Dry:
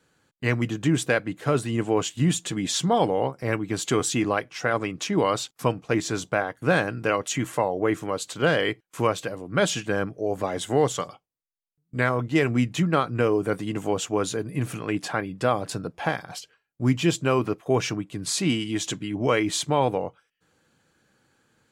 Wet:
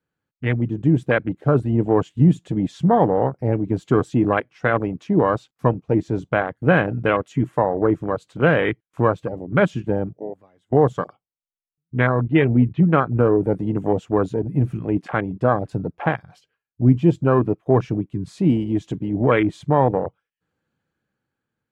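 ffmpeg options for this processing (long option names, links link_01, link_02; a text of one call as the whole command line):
ffmpeg -i in.wav -filter_complex "[0:a]asettb=1/sr,asplit=3[link_01][link_02][link_03];[link_01]atrim=end=12.004[link_04];[link_02]atrim=start=12:end=13.18,asetpts=PTS-STARTPTS,afade=type=in:duration=0.004:curve=qsin,afade=type=out:start_time=1.176:duration=0.004:curve=qsin,lowpass=frequency=3700:width=0.5412,lowpass=frequency=3700:width=1.3066[link_05];[link_03]atrim=start=13.176[link_06];[link_04][link_05]acrossfade=duration=0.004:curve1=hsin:curve2=qsin[link_07];[link_07][link_06]acrossfade=duration=0.004:curve1=qsin:curve2=hsin,asplit=2[link_08][link_09];[link_08]atrim=end=10.72,asetpts=PTS-STARTPTS,afade=type=out:start_time=9.89:duration=0.83:curve=qua:silence=0.0794328[link_10];[link_09]atrim=start=10.72,asetpts=PTS-STARTPTS,afade=type=in:duration=0.004:curve=hsin:silence=0.0794328[link_11];[link_10][link_11]concat=n=2:v=0:a=1,afwtdn=0.0447,bass=frequency=250:gain=4,treble=frequency=4000:gain=-11,dynaudnorm=framelen=120:gausssize=13:maxgain=5.5dB" out.wav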